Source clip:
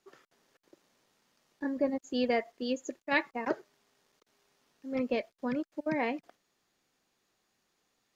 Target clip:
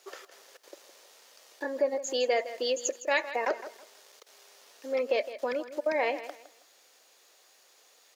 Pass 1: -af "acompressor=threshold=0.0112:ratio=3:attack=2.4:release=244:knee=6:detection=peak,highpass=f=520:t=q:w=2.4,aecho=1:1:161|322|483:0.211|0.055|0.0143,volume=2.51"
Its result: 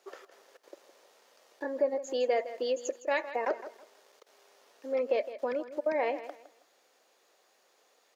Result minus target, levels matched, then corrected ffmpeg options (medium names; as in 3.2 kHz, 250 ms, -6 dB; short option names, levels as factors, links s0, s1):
4 kHz band -6.5 dB
-af "acompressor=threshold=0.0112:ratio=3:attack=2.4:release=244:knee=6:detection=peak,highpass=f=520:t=q:w=2.4,highshelf=f=2000:g=11,aecho=1:1:161|322|483:0.211|0.055|0.0143,volume=2.51"